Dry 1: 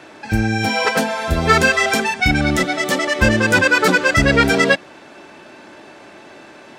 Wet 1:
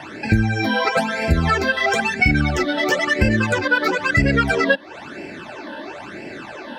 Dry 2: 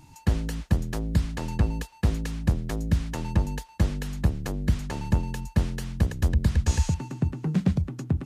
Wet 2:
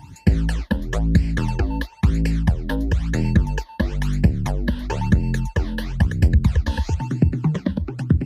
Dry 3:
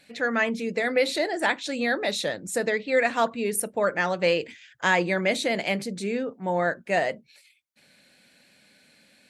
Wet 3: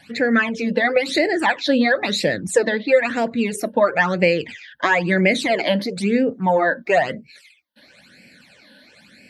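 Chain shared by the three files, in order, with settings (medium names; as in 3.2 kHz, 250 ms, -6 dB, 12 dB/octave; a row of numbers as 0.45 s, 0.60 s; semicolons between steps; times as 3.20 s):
high-pass 46 Hz; treble shelf 5.7 kHz -10.5 dB; compression 6:1, threshold -24 dBFS; phase shifter stages 12, 1 Hz, lowest notch 120–1200 Hz; peak normalisation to -3 dBFS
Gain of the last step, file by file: +11.0 dB, +12.0 dB, +14.0 dB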